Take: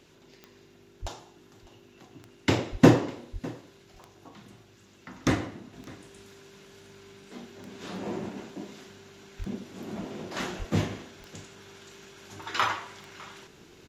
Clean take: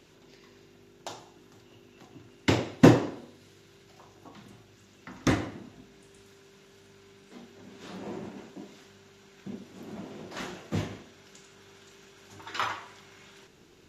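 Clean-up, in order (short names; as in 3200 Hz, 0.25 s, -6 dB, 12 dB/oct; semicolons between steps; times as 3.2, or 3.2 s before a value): de-click; de-plosive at 1.01/2.71/3.32/9.38/10.58; inverse comb 0.603 s -21 dB; gain correction -4.5 dB, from 5.73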